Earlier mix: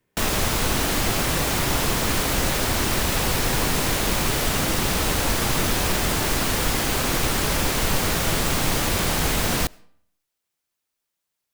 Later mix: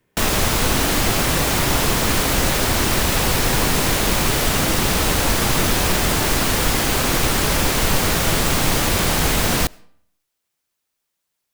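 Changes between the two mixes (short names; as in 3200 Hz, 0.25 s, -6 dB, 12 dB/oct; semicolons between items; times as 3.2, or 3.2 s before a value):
speech +6.0 dB; background +4.0 dB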